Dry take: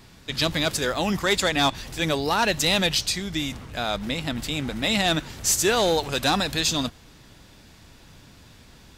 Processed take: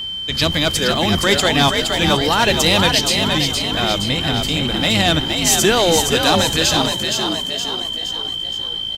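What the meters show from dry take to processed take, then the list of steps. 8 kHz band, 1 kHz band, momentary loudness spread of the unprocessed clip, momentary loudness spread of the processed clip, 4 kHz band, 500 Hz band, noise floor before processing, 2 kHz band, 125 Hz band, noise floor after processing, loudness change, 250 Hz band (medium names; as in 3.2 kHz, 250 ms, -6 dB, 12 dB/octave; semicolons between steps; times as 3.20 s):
+7.0 dB, +7.5 dB, 8 LU, 8 LU, +10.5 dB, +7.5 dB, -51 dBFS, +7.0 dB, +9.5 dB, -25 dBFS, +7.5 dB, +7.5 dB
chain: octave divider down 1 oct, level -3 dB; whistle 3.1 kHz -29 dBFS; frequency-shifting echo 468 ms, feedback 51%, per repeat +55 Hz, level -5 dB; trim +5.5 dB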